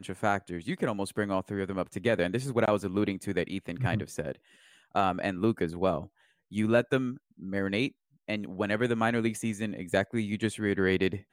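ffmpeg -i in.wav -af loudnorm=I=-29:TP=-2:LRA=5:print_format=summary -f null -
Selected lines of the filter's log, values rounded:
Input Integrated:    -30.1 LUFS
Input True Peak:     -11.6 dBTP
Input LRA:             1.6 LU
Input Threshold:     -40.3 LUFS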